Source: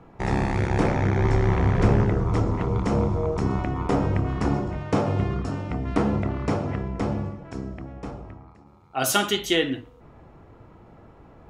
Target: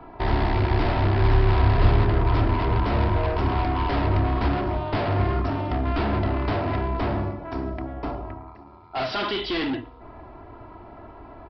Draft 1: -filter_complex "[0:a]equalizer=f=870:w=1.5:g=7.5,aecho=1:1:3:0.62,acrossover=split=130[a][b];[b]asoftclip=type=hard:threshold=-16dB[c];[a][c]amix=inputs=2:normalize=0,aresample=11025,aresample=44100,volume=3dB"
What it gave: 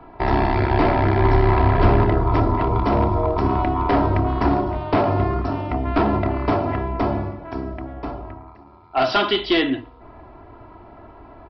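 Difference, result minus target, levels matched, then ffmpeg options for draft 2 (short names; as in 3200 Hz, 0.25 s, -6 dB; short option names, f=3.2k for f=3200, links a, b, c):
hard clip: distortion -10 dB
-filter_complex "[0:a]equalizer=f=870:w=1.5:g=7.5,aecho=1:1:3:0.62,acrossover=split=130[a][b];[b]asoftclip=type=hard:threshold=-27.5dB[c];[a][c]amix=inputs=2:normalize=0,aresample=11025,aresample=44100,volume=3dB"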